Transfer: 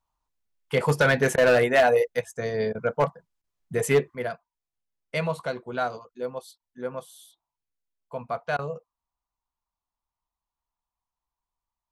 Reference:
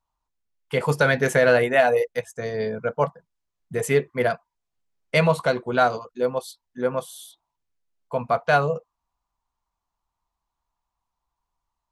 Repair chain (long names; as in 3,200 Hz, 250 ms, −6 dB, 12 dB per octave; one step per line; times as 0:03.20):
clipped peaks rebuilt −13 dBFS
repair the gap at 0:01.36/0:02.73/0:03.42/0:06.58/0:08.57, 17 ms
level 0 dB, from 0:04.15 +8.5 dB